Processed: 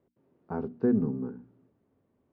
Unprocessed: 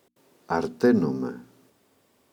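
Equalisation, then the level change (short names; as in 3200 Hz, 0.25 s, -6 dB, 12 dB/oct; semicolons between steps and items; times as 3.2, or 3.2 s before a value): LPF 1200 Hz 12 dB/oct; air absorption 190 m; bell 940 Hz -11 dB 3 oct; 0.0 dB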